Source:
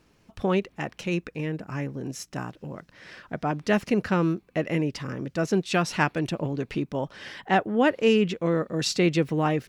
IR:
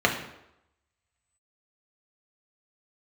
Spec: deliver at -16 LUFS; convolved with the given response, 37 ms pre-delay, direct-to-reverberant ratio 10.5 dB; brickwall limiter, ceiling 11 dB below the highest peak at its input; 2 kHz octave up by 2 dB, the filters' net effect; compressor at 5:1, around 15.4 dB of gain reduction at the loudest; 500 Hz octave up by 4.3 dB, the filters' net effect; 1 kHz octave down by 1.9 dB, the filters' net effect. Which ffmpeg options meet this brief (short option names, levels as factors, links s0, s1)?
-filter_complex "[0:a]equalizer=f=500:t=o:g=6.5,equalizer=f=1000:t=o:g=-7,equalizer=f=2000:t=o:g=4.5,acompressor=threshold=0.0316:ratio=5,alimiter=level_in=1.88:limit=0.0631:level=0:latency=1,volume=0.531,asplit=2[s0][s1];[1:a]atrim=start_sample=2205,adelay=37[s2];[s1][s2]afir=irnorm=-1:irlink=0,volume=0.0447[s3];[s0][s3]amix=inputs=2:normalize=0,volume=13.3"